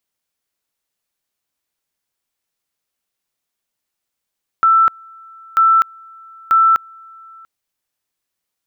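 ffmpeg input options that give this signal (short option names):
-f lavfi -i "aevalsrc='pow(10,(-8-29*gte(mod(t,0.94),0.25))/20)*sin(2*PI*1330*t)':d=2.82:s=44100"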